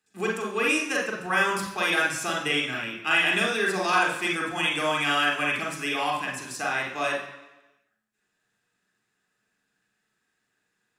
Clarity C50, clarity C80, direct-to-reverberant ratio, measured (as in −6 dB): 3.0 dB, 7.5 dB, −2.0 dB